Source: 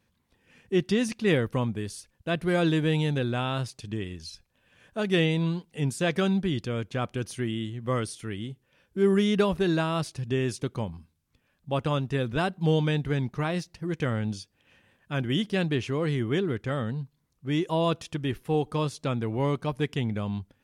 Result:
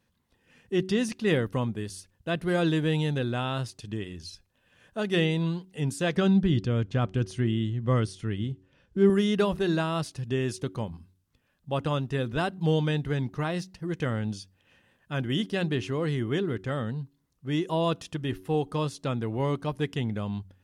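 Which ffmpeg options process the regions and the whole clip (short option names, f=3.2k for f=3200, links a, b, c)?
-filter_complex "[0:a]asettb=1/sr,asplit=3[a][b][c];[a]atrim=end=6.164[d];[b]atrim=start=6.16:end=9.1,asetpts=PTS-STARTPTS,afade=t=in:d=0.004:c=qsin,afade=t=out:st=2.936:d=0.004:c=qsin,lowpass=6.9k,lowshelf=f=210:g=10[e];[c]atrim=start=9.096[f];[d][e]acrossfade=d=0.004:c1=hsin:c2=qsin[g];[g][f]acrossfade=d=0.004:c1=qsin:c2=hsin,bandreject=f=2.3k:w=14,bandreject=f=93.74:t=h:w=4,bandreject=f=187.48:t=h:w=4,bandreject=f=281.22:t=h:w=4,bandreject=f=374.96:t=h:w=4,volume=-1dB"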